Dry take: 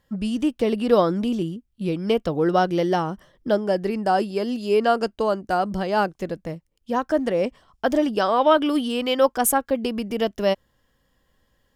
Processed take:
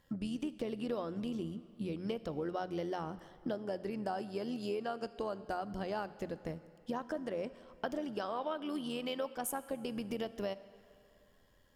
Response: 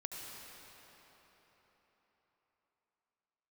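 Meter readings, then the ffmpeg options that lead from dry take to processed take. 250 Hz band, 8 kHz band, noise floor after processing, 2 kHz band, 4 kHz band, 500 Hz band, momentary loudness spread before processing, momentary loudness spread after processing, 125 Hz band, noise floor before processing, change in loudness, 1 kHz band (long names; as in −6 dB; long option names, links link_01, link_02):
−15.0 dB, −17.5 dB, −66 dBFS, −17.0 dB, −16.0 dB, −17.5 dB, 10 LU, 5 LU, −14.5 dB, −69 dBFS, −17.0 dB, −18.0 dB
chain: -filter_complex "[0:a]acompressor=threshold=-34dB:ratio=6,bandreject=frequency=60:width_type=h:width=6,bandreject=frequency=120:width_type=h:width=6,bandreject=frequency=180:width_type=h:width=6,tremolo=f=86:d=0.462,asplit=2[link_01][link_02];[1:a]atrim=start_sample=2205,asetrate=79380,aresample=44100[link_03];[link_02][link_03]afir=irnorm=-1:irlink=0,volume=-6dB[link_04];[link_01][link_04]amix=inputs=2:normalize=0,volume=-1.5dB"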